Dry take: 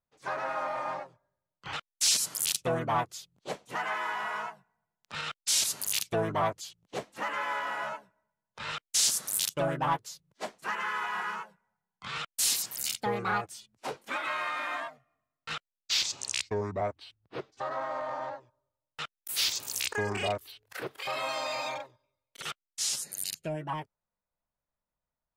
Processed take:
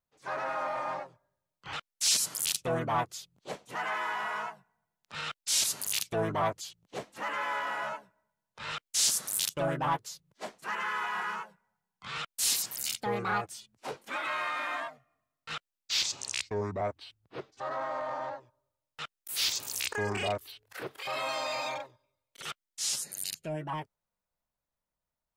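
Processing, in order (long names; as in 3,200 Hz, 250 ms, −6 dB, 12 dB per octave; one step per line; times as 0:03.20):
transient designer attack −4 dB, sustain +1 dB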